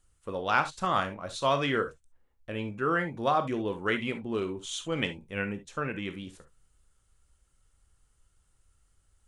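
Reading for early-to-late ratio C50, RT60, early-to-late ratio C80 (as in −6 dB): 12.5 dB, non-exponential decay, 39.5 dB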